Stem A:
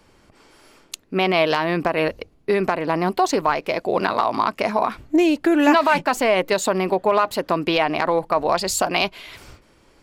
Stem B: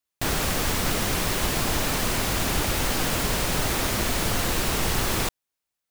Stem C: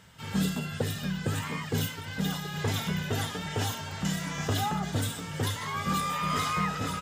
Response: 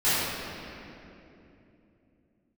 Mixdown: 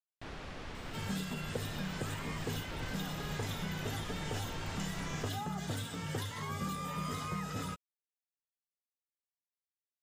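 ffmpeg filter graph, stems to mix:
-filter_complex "[1:a]lowpass=3500,dynaudnorm=framelen=940:gausssize=3:maxgain=11.5dB,volume=-19.5dB[link_01];[2:a]adelay=750,volume=1.5dB[link_02];[link_01][link_02]amix=inputs=2:normalize=0,acrossover=split=590|5800[link_03][link_04][link_05];[link_03]acompressor=threshold=-38dB:ratio=4[link_06];[link_04]acompressor=threshold=-44dB:ratio=4[link_07];[link_05]acompressor=threshold=-53dB:ratio=4[link_08];[link_06][link_07][link_08]amix=inputs=3:normalize=0"

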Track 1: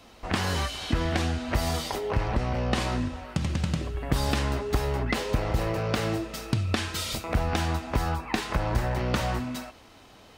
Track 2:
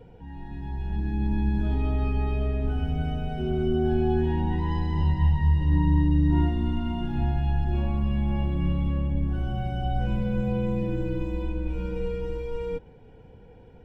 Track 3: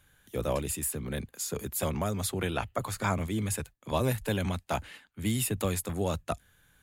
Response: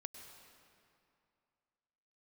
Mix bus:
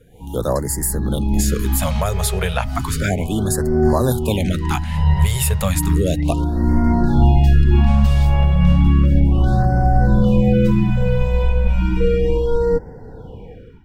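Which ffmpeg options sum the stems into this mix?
-filter_complex "[0:a]alimiter=limit=-20.5dB:level=0:latency=1:release=190,acompressor=threshold=-33dB:ratio=3,adelay=1100,volume=-11.5dB[link_01];[1:a]dynaudnorm=framelen=110:gausssize=7:maxgain=7dB,volume=-3dB[link_02];[2:a]volume=0dB,asplit=2[link_03][link_04];[link_04]apad=whole_len=610419[link_05];[link_02][link_05]sidechaincompress=threshold=-38dB:ratio=8:attack=8.3:release=500[link_06];[link_01][link_06][link_03]amix=inputs=3:normalize=0,dynaudnorm=framelen=110:gausssize=3:maxgain=10.5dB,afftfilt=real='re*(1-between(b*sr/1024,250*pow(3100/250,0.5+0.5*sin(2*PI*0.33*pts/sr))/1.41,250*pow(3100/250,0.5+0.5*sin(2*PI*0.33*pts/sr))*1.41))':imag='im*(1-between(b*sr/1024,250*pow(3100/250,0.5+0.5*sin(2*PI*0.33*pts/sr))/1.41,250*pow(3100/250,0.5+0.5*sin(2*PI*0.33*pts/sr))*1.41))':win_size=1024:overlap=0.75"

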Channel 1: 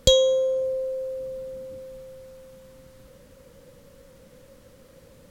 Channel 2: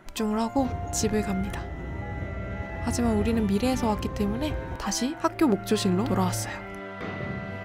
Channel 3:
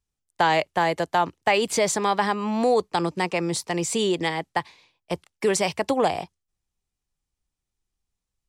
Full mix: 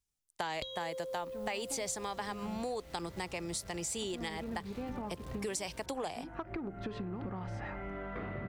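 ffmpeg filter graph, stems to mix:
ffmpeg -i stem1.wav -i stem2.wav -i stem3.wav -filter_complex "[0:a]highshelf=frequency=5200:width_type=q:width=3:gain=-8,acrusher=bits=7:mix=0:aa=0.000001,adelay=550,volume=-3dB[link_01];[1:a]lowpass=2000,asoftclip=type=tanh:threshold=-14.5dB,aeval=exprs='val(0)+0.00708*(sin(2*PI*50*n/s)+sin(2*PI*2*50*n/s)/2+sin(2*PI*3*50*n/s)/3+sin(2*PI*4*50*n/s)/4+sin(2*PI*5*50*n/s)/5)':channel_layout=same,adelay=1150,volume=-1.5dB[link_02];[2:a]highshelf=frequency=4100:gain=10,volume=-7dB,asplit=2[link_03][link_04];[link_04]apad=whole_len=387994[link_05];[link_02][link_05]sidechaincompress=threshold=-36dB:ratio=8:attack=12:release=416[link_06];[link_01][link_06]amix=inputs=2:normalize=0,bandreject=frequency=86.95:width_type=h:width=4,bandreject=frequency=173.9:width_type=h:width=4,bandreject=frequency=260.85:width_type=h:width=4,bandreject=frequency=347.8:width_type=h:width=4,bandreject=frequency=434.75:width_type=h:width=4,bandreject=frequency=521.7:width_type=h:width=4,bandreject=frequency=608.65:width_type=h:width=4,bandreject=frequency=695.6:width_type=h:width=4,bandreject=frequency=782.55:width_type=h:width=4,acompressor=threshold=-30dB:ratio=12,volume=0dB[link_07];[link_03][link_07]amix=inputs=2:normalize=0,acompressor=threshold=-38dB:ratio=3" out.wav

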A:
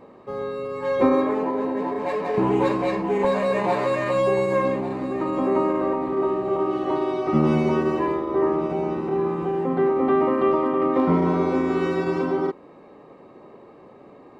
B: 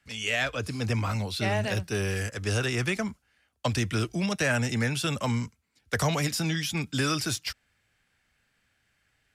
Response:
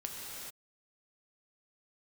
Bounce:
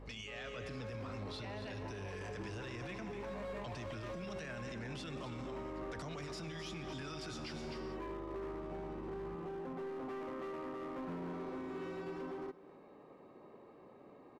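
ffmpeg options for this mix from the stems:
-filter_complex "[0:a]acompressor=threshold=-31dB:ratio=2.5,asoftclip=type=hard:threshold=-28.5dB,volume=-11dB,asplit=2[link_01][link_02];[link_02]volume=-19dB[link_03];[1:a]lowpass=5100,acompressor=threshold=-34dB:ratio=6,aeval=exprs='val(0)+0.00398*(sin(2*PI*50*n/s)+sin(2*PI*2*50*n/s)/2+sin(2*PI*3*50*n/s)/3+sin(2*PI*4*50*n/s)/4+sin(2*PI*5*50*n/s)/5)':channel_layout=same,volume=-5dB,asplit=3[link_04][link_05][link_06];[link_05]volume=-8.5dB[link_07];[link_06]volume=-9dB[link_08];[2:a]atrim=start_sample=2205[link_09];[link_07][link_09]afir=irnorm=-1:irlink=0[link_10];[link_03][link_08]amix=inputs=2:normalize=0,aecho=0:1:256:1[link_11];[link_01][link_04][link_10][link_11]amix=inputs=4:normalize=0,alimiter=level_in=12.5dB:limit=-24dB:level=0:latency=1:release=33,volume=-12.5dB"

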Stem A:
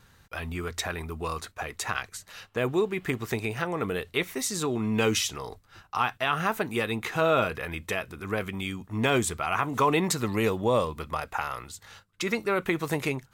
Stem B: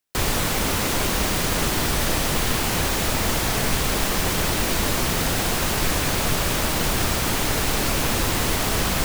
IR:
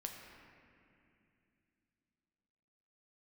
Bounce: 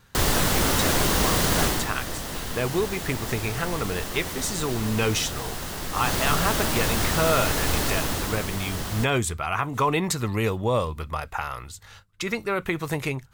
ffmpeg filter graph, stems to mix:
-filter_complex "[0:a]asubboost=boost=2.5:cutoff=130,volume=1dB[link_01];[1:a]equalizer=frequency=2400:width=6.3:gain=-6,volume=6dB,afade=type=out:start_time=1.63:duration=0.24:silence=0.281838,afade=type=in:start_time=5.93:duration=0.2:silence=0.398107,afade=type=out:start_time=7.78:duration=0.69:silence=0.421697,asplit=2[link_02][link_03];[link_03]volume=-4.5dB[link_04];[2:a]atrim=start_sample=2205[link_05];[link_04][link_05]afir=irnorm=-1:irlink=0[link_06];[link_01][link_02][link_06]amix=inputs=3:normalize=0"

